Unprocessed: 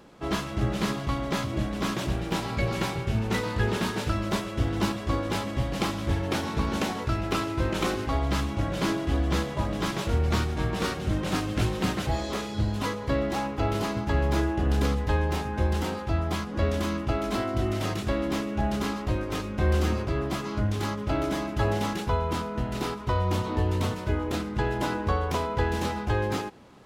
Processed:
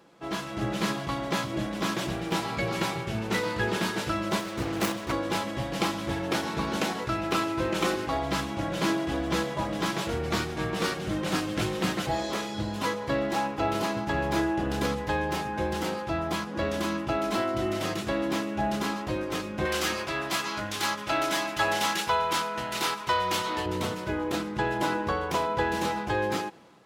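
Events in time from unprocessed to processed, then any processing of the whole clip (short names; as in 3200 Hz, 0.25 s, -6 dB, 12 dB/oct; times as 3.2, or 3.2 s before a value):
4.4–5.12 self-modulated delay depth 0.91 ms
19.65–23.66 tilt shelf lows -8 dB, about 720 Hz
whole clip: HPF 230 Hz 6 dB/oct; comb 6 ms, depth 33%; AGC gain up to 5.5 dB; gain -4.5 dB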